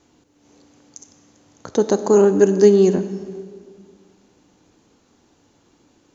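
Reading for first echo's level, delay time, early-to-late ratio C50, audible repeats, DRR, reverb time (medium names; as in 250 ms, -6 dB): no echo, no echo, 11.5 dB, no echo, 10.0 dB, 1.9 s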